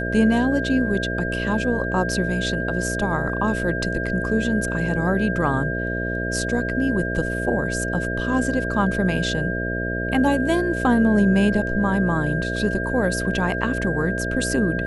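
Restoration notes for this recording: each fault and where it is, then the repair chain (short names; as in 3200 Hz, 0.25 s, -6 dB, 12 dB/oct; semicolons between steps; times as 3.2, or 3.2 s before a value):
buzz 60 Hz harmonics 11 -27 dBFS
tone 1600 Hz -27 dBFS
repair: de-hum 60 Hz, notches 11; notch 1600 Hz, Q 30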